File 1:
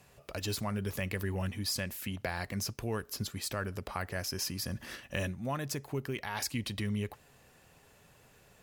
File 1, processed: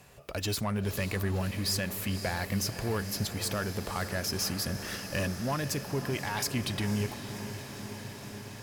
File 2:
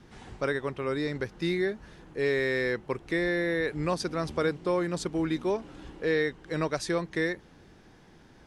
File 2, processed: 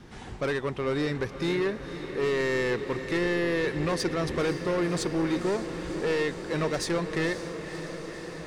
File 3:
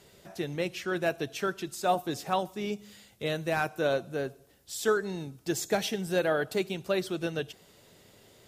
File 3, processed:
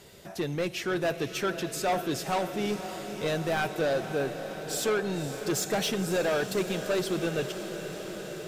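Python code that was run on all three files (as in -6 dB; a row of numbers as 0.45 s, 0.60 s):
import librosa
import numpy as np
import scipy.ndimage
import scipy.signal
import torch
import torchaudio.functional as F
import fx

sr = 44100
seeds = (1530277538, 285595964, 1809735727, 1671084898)

y = 10.0 ** (-28.0 / 20.0) * np.tanh(x / 10.0 ** (-28.0 / 20.0))
y = fx.echo_diffused(y, sr, ms=531, feedback_pct=79, wet_db=-11.0)
y = y * 10.0 ** (5.0 / 20.0)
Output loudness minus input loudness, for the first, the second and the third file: +3.5 LU, +1.0 LU, +1.0 LU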